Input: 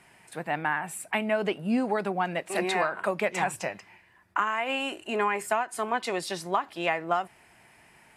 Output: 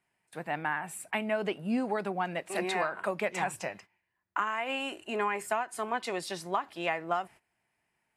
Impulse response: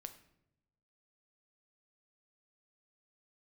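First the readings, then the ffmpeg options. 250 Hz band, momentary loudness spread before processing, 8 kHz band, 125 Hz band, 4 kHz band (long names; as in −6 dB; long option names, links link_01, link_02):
−4.0 dB, 6 LU, −4.0 dB, −4.0 dB, −4.0 dB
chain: -af "agate=range=-18dB:threshold=-46dB:ratio=16:detection=peak,volume=-4dB"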